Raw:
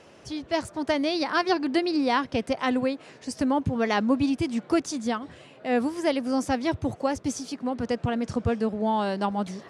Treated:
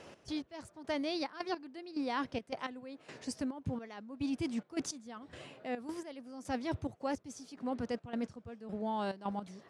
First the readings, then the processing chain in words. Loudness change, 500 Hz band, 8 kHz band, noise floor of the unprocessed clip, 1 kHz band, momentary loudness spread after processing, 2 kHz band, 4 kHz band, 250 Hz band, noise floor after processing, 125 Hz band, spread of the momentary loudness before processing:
-13.0 dB, -13.5 dB, -9.5 dB, -52 dBFS, -13.0 dB, 11 LU, -14.0 dB, -12.0 dB, -12.5 dB, -65 dBFS, -12.0 dB, 7 LU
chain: reverse; compression 6:1, threshold -32 dBFS, peak gain reduction 13.5 dB; reverse; trance gate "x.x...xx" 107 bpm -12 dB; trim -1 dB

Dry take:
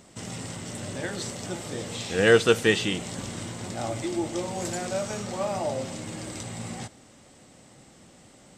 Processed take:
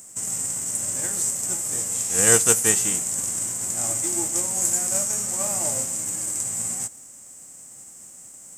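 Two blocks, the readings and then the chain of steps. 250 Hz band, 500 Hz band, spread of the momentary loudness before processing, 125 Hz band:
-5.0 dB, -6.0 dB, 16 LU, -3.5 dB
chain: formants flattened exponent 0.6; resonant high shelf 5.5 kHz +12.5 dB, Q 3; trim -4 dB

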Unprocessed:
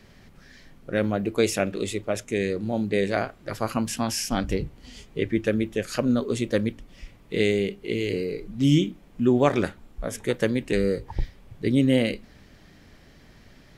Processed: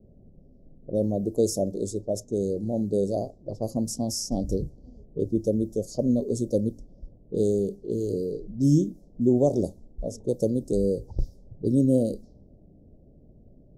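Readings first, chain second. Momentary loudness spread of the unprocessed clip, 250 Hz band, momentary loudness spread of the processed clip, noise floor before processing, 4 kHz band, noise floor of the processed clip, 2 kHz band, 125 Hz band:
11 LU, -1.0 dB, 11 LU, -53 dBFS, -9.0 dB, -54 dBFS, under -40 dB, -0.5 dB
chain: elliptic band-stop 620–5500 Hz, stop band 60 dB; level-controlled noise filter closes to 570 Hz, open at -24.5 dBFS

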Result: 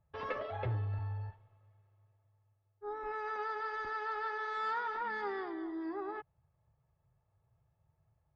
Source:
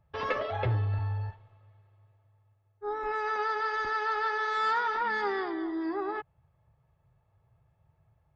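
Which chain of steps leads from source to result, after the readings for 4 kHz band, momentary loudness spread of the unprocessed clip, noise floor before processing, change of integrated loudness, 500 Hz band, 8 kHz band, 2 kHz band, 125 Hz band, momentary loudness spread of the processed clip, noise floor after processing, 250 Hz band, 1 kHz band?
-11.0 dB, 8 LU, -71 dBFS, -7.5 dB, -7.0 dB, no reading, -8.5 dB, -7.0 dB, 8 LU, -78 dBFS, -7.0 dB, -7.5 dB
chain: treble shelf 3.6 kHz -8 dB; trim -7 dB

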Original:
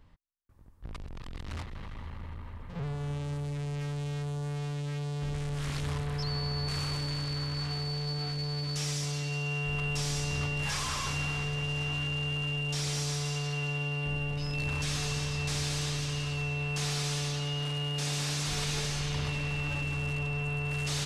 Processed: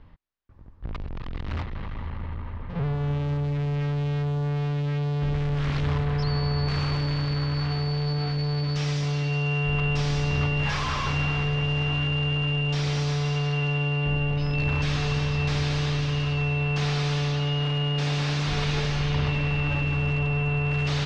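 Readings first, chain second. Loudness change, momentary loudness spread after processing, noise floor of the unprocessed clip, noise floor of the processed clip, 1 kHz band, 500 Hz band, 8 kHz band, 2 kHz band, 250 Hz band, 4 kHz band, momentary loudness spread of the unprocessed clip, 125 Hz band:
+6.5 dB, 6 LU, -43 dBFS, -34 dBFS, +7.5 dB, +8.0 dB, -7.5 dB, +5.5 dB, +8.5 dB, +2.5 dB, 8 LU, +8.5 dB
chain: distance through air 220 m; trim +8.5 dB

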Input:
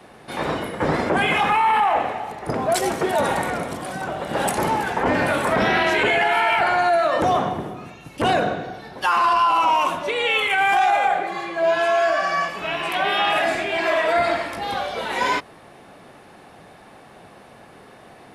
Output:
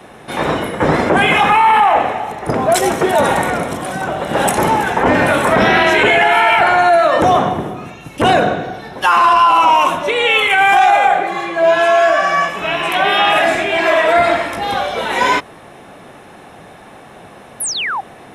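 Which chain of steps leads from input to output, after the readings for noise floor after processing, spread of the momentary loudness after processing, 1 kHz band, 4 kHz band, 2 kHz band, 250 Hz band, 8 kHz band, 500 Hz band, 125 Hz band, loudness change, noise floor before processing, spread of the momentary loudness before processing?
-39 dBFS, 10 LU, +7.5 dB, +7.5 dB, +7.5 dB, +7.5 dB, +9.5 dB, +7.5 dB, +7.5 dB, +7.5 dB, -46 dBFS, 10 LU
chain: painted sound fall, 17.60–18.01 s, 720–12000 Hz -27 dBFS; band-stop 4.6 kHz, Q 6.4; trim +7.5 dB

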